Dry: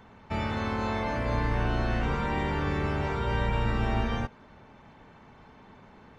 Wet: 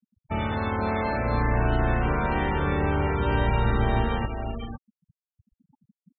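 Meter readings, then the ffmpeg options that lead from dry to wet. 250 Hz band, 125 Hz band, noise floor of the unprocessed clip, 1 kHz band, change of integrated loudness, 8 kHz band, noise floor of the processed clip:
+3.5 dB, +4.0 dB, -54 dBFS, +4.5 dB, +4.0 dB, n/a, under -85 dBFS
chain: -af "aecho=1:1:207|379|467|505:0.188|0.119|0.211|0.398,afftfilt=real='re*gte(hypot(re,im),0.0224)':imag='im*gte(hypot(re,im),0.0224)':win_size=1024:overlap=0.75,volume=3dB"

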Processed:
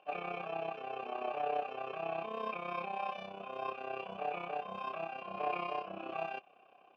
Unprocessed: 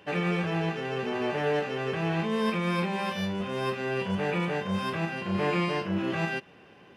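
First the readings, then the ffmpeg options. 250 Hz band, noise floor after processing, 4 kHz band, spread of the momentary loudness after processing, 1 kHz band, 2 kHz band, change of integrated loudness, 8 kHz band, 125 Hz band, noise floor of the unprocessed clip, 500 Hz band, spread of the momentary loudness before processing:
-21.0 dB, -63 dBFS, -14.5 dB, 6 LU, -3.5 dB, -13.0 dB, -10.5 dB, under -25 dB, -25.0 dB, -54 dBFS, -9.5 dB, 4 LU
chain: -filter_complex "[0:a]tremolo=f=32:d=0.71,asplit=3[a][b][c];[a]bandpass=f=730:t=q:w=8,volume=0dB[d];[b]bandpass=f=1.09k:t=q:w=8,volume=-6dB[e];[c]bandpass=f=2.44k:t=q:w=8,volume=-9dB[f];[d][e][f]amix=inputs=3:normalize=0,aeval=exprs='0.0355*(cos(1*acos(clip(val(0)/0.0355,-1,1)))-cos(1*PI/2))+0.000447*(cos(2*acos(clip(val(0)/0.0355,-1,1)))-cos(2*PI/2))':c=same,volume=5.5dB"

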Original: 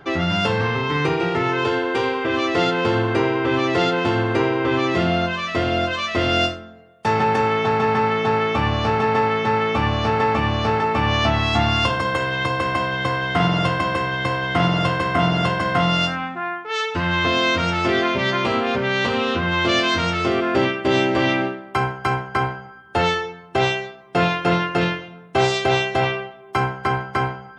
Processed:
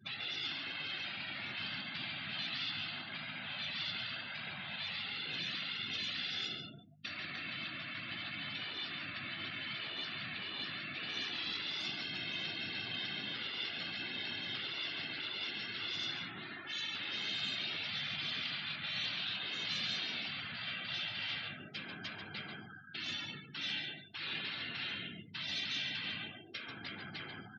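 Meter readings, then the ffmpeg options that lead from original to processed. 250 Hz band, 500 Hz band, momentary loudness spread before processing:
-27.5 dB, -35.0 dB, 5 LU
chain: -filter_complex "[0:a]acompressor=threshold=-27dB:ratio=2,asoftclip=type=tanh:threshold=-24dB,afftfilt=real='hypot(re,im)*cos(2*PI*random(0))':imag='hypot(re,im)*sin(2*PI*random(1))':win_size=512:overlap=0.75,afftfilt=real='re*lt(hypot(re,im),0.0447)':imag='im*lt(hypot(re,im),0.0447)':win_size=1024:overlap=0.75,equalizer=f=500:t=o:w=1:g=-9,equalizer=f=1k:t=o:w=1:g=-9,equalizer=f=4k:t=o:w=1:g=9,equalizer=f=8k:t=o:w=1:g=-4,aeval=exprs='val(0)+0.00141*(sin(2*PI*50*n/s)+sin(2*PI*2*50*n/s)/2+sin(2*PI*3*50*n/s)/3+sin(2*PI*4*50*n/s)/4+sin(2*PI*5*50*n/s)/5)':c=same,highpass=f=110:w=0.5412,highpass=f=110:w=1.3066,asplit=2[a][b];[b]aecho=0:1:139:0.531[c];[a][c]amix=inputs=2:normalize=0,afftdn=nr=34:nf=-48"

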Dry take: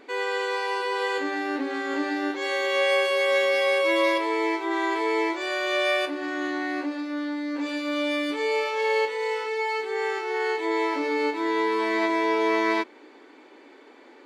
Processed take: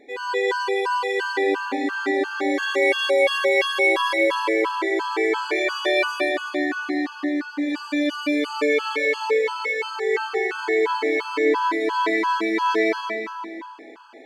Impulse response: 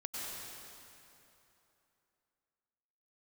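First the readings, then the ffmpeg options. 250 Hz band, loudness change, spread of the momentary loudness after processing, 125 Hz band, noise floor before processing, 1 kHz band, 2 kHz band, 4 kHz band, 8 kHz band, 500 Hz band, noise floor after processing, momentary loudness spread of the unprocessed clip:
+2.5 dB, +3.0 dB, 7 LU, n/a, -51 dBFS, +3.0 dB, +4.0 dB, +2.5 dB, +3.0 dB, +3.0 dB, -39 dBFS, 7 LU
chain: -filter_complex "[1:a]atrim=start_sample=2205,asetrate=52920,aresample=44100[a];[0:a][a]afir=irnorm=-1:irlink=0,afftfilt=real='re*gt(sin(2*PI*2.9*pts/sr)*(1-2*mod(floor(b*sr/1024/840),2)),0)':imag='im*gt(sin(2*PI*2.9*pts/sr)*(1-2*mod(floor(b*sr/1024/840),2)),0)':win_size=1024:overlap=0.75,volume=6.5dB"

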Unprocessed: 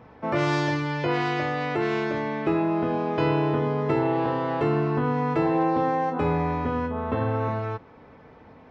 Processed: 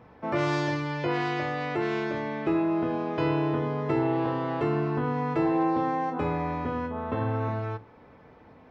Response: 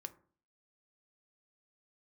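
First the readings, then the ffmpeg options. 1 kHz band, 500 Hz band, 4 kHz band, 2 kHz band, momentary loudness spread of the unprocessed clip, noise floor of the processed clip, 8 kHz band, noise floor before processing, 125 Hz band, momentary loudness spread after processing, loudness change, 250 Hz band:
-3.5 dB, -3.5 dB, -3.5 dB, -3.0 dB, 4 LU, -53 dBFS, n/a, -50 dBFS, -3.5 dB, 5 LU, -3.0 dB, -2.0 dB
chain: -filter_complex "[0:a]asplit=2[a][b];[1:a]atrim=start_sample=2205[c];[b][c]afir=irnorm=-1:irlink=0,volume=2dB[d];[a][d]amix=inputs=2:normalize=0,volume=-8dB"

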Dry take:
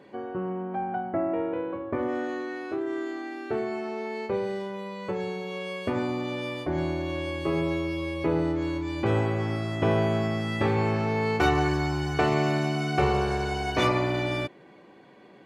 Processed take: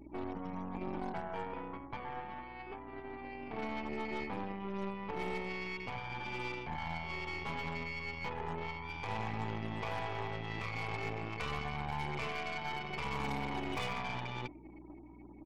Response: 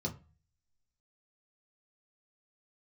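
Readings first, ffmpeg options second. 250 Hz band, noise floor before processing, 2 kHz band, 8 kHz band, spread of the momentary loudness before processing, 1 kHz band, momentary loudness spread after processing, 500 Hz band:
-14.5 dB, -52 dBFS, -7.5 dB, -12.0 dB, 9 LU, -9.0 dB, 8 LU, -15.5 dB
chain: -filter_complex "[0:a]acrossover=split=130[a][b];[a]asoftclip=type=tanh:threshold=-34.5dB[c];[b]flanger=delay=0.4:depth=5.2:regen=72:speed=0.3:shape=triangular[d];[c][d]amix=inputs=2:normalize=0,lowshelf=f=120:g=4.5,acrusher=bits=10:mix=0:aa=0.000001,aresample=8000,aresample=44100,asplit=3[e][f][g];[e]bandpass=f=300:t=q:w=8,volume=0dB[h];[f]bandpass=f=870:t=q:w=8,volume=-6dB[i];[g]bandpass=f=2.24k:t=q:w=8,volume=-9dB[j];[h][i][j]amix=inputs=3:normalize=0,afftfilt=real='re*lt(hypot(re,im),0.0224)':imag='im*lt(hypot(re,im),0.0224)':win_size=1024:overlap=0.75,aeval=exprs='val(0)+0.000316*(sin(2*PI*60*n/s)+sin(2*PI*2*60*n/s)/2+sin(2*PI*3*60*n/s)/3+sin(2*PI*4*60*n/s)/4+sin(2*PI*5*60*n/s)/5)':c=same,acrusher=bits=3:mode=log:mix=0:aa=0.000001,afftfilt=real='re*gte(hypot(re,im),0.000631)':imag='im*gte(hypot(re,im),0.000631)':win_size=1024:overlap=0.75,aeval=exprs='0.0119*(cos(1*acos(clip(val(0)/0.0119,-1,1)))-cos(1*PI/2))+0.00188*(cos(6*acos(clip(val(0)/0.0119,-1,1)))-cos(6*PI/2))':c=same,volume=12.5dB"

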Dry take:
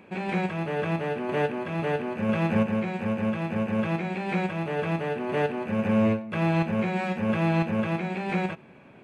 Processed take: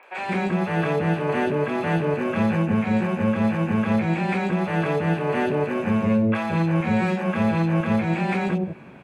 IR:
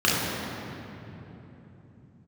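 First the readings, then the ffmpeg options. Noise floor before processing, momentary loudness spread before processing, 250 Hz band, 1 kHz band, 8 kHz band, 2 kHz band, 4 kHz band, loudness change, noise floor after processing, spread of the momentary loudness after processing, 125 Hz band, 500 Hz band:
-51 dBFS, 5 LU, +5.0 dB, +4.0 dB, n/a, +4.0 dB, +3.0 dB, +4.5 dB, -33 dBFS, 3 LU, +5.0 dB, +3.5 dB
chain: -filter_complex "[0:a]alimiter=limit=-19.5dB:level=0:latency=1:release=192,acrossover=split=580|2900[a][b][c];[c]adelay=30[d];[a]adelay=180[e];[e][b][d]amix=inputs=3:normalize=0,volume=8dB"

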